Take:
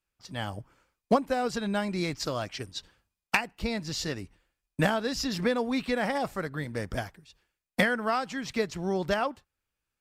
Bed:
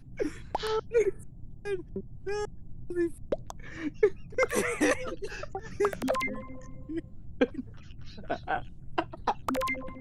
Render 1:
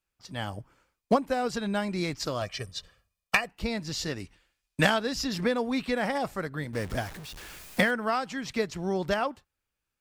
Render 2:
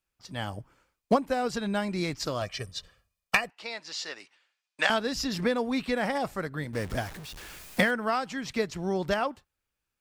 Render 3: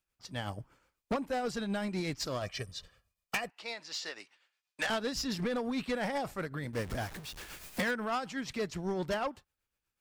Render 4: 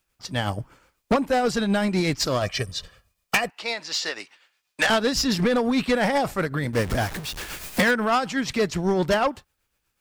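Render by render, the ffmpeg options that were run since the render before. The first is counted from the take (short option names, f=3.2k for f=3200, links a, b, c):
-filter_complex "[0:a]asettb=1/sr,asplit=3[a][b][c];[a]atrim=end=2.414[d];[b]atrim=start=2.41:end=3.49,asetpts=PTS-STARTPTS,afade=t=in:d=0.004:c=qsin,afade=t=out:st=1.076:d=0.004:c=qsin,aecho=1:1:1.7:0.65,atrim=end_sample=47628[e];[c]atrim=start=3.486[f];[d][e]acrossfade=d=0.004:c1=hsin:c2=qsin[g];[g][f]acrossfade=d=0.004:c1=qsin:c2=hsin,asettb=1/sr,asplit=3[h][i][j];[h]atrim=end=4.204[k];[i]atrim=start=4.2:end=4.99,asetpts=PTS-STARTPTS,afade=t=in:d=0.004:c=qsin,afade=t=out:st=0.786:d=0.004:c=qsin,equalizer=f=4k:t=o:w=2.9:g=8[l];[j]atrim=start=4.986[m];[k][l]acrossfade=d=0.004:c1=hsin:c2=qsin[n];[n][m]acrossfade=d=0.004:c1=qsin:c2=hsin,asettb=1/sr,asplit=3[o][p][q];[o]atrim=end=6.734[r];[p]atrim=start=6.73:end=7.91,asetpts=PTS-STARTPTS,afade=t=in:d=0.004:c=qsin,afade=t=out:st=1.176:d=0.004:c=qsin,aeval=exprs='val(0)+0.5*0.0126*sgn(val(0))':c=same[s];[q]atrim=start=7.906[t];[r][s]acrossfade=d=0.004:c1=hsin:c2=qsin[u];[u][t]acrossfade=d=0.004:c1=qsin:c2=hsin"
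-filter_complex "[0:a]asettb=1/sr,asplit=3[a][b][c];[a]atrim=end=3.504[d];[b]atrim=start=3.5:end=4.9,asetpts=PTS-STARTPTS,afade=t=in:d=0.004:c=qsin,afade=t=out:st=1.396:d=0.004:c=qsin,highpass=720,lowpass=6.2k[e];[c]atrim=start=4.896[f];[d][e]acrossfade=d=0.004:c1=hsin:c2=qsin[g];[g][f]acrossfade=d=0.004:c1=qsin:c2=hsin"
-af "tremolo=f=8.1:d=0.51,asoftclip=type=tanh:threshold=-27dB"
-af "volume=12dB"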